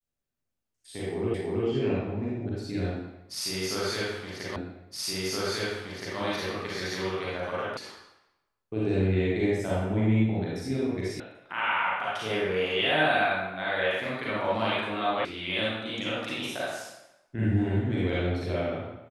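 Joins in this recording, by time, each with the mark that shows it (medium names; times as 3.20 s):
1.34 s: repeat of the last 0.32 s
4.56 s: repeat of the last 1.62 s
7.77 s: sound stops dead
11.20 s: sound stops dead
15.25 s: sound stops dead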